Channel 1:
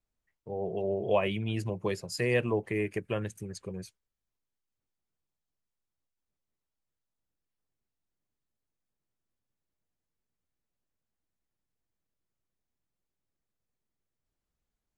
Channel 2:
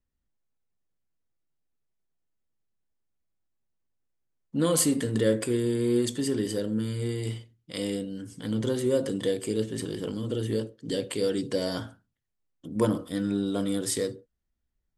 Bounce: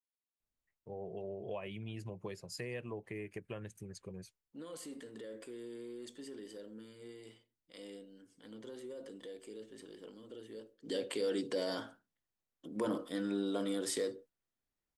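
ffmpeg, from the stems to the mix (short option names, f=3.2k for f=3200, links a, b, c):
-filter_complex "[0:a]acompressor=threshold=-33dB:ratio=3,adelay=400,volume=1.5dB[a];[1:a]highpass=310,highshelf=f=7k:g=-9,alimiter=limit=-23.5dB:level=0:latency=1:release=14,volume=-3dB,afade=t=in:st=10.71:d=0.24:silence=0.223872,asplit=2[b][c];[c]apad=whole_len=678029[d];[a][d]sidechaingate=range=-9dB:threshold=-58dB:ratio=16:detection=peak[e];[e][b]amix=inputs=2:normalize=0"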